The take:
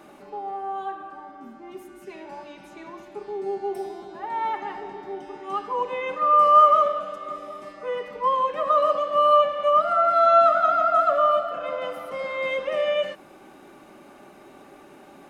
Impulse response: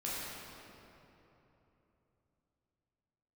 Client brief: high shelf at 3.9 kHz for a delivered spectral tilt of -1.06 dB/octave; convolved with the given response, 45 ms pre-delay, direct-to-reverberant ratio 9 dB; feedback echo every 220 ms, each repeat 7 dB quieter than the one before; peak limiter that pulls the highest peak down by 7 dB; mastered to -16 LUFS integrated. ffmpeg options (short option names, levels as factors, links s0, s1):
-filter_complex "[0:a]highshelf=f=3900:g=-5,alimiter=limit=0.211:level=0:latency=1,aecho=1:1:220|440|660|880|1100:0.447|0.201|0.0905|0.0407|0.0183,asplit=2[s0][s1];[1:a]atrim=start_sample=2205,adelay=45[s2];[s1][s2]afir=irnorm=-1:irlink=0,volume=0.224[s3];[s0][s3]amix=inputs=2:normalize=0,volume=2.37"